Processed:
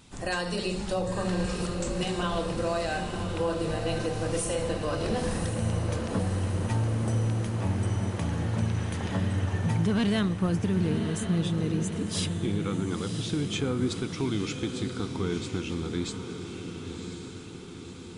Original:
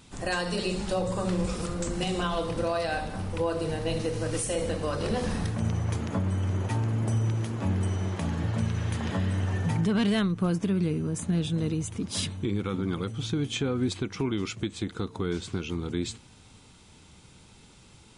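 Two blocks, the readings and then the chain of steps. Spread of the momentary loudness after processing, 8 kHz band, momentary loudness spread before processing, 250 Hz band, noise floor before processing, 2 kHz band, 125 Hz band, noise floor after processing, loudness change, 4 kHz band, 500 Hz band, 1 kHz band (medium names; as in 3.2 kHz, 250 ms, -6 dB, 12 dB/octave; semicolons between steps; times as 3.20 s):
7 LU, 0.0 dB, 5 LU, 0.0 dB, -54 dBFS, 0.0 dB, 0.0 dB, -41 dBFS, 0.0 dB, 0.0 dB, 0.0 dB, 0.0 dB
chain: echo that smears into a reverb 1042 ms, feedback 58%, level -7 dB; trim -1 dB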